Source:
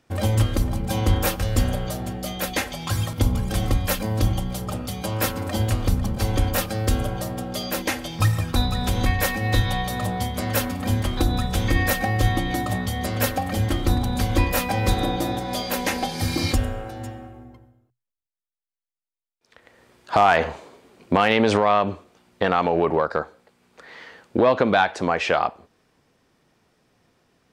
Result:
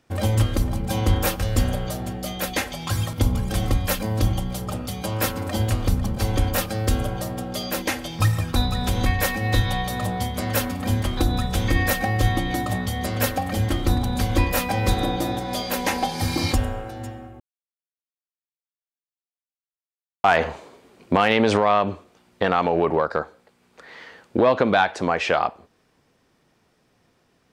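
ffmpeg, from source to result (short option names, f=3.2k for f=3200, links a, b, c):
-filter_complex "[0:a]asettb=1/sr,asplit=3[a][b][c];[a]atrim=end=15.844[d];[b]atrim=start=15.84:end=16.8,asetpts=PTS-STARTPTS,afade=t=in:d=0.004:c=qsin,afade=t=out:st=0.956:d=0.004:c=qsin,equalizer=f=900:t=o:w=0.47:g=6[e];[c]atrim=start=16.796[f];[d][e]acrossfade=d=0.004:c1=hsin:c2=qsin[g];[g][f]acrossfade=d=0.004:c1=qsin:c2=hsin,asplit=3[h][i][j];[h]atrim=end=17.4,asetpts=PTS-STARTPTS,afade=t=out:st=17.396:d=0.004:c=hsin[k];[i]atrim=start=17.4:end=20.24,asetpts=PTS-STARTPTS,volume=0[l];[j]atrim=start=20.24,asetpts=PTS-STARTPTS,afade=t=in:d=0.004:c=hsin[m];[k][l][m]concat=n=3:v=0:a=1"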